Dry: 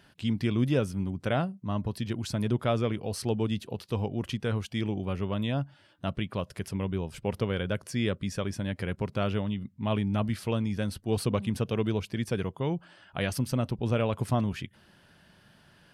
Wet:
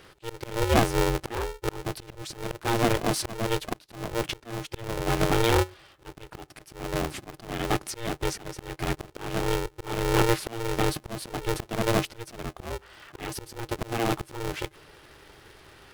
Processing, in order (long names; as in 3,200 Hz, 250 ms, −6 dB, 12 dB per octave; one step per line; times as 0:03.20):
volume swells 430 ms
ring modulator with a square carrier 230 Hz
level +7.5 dB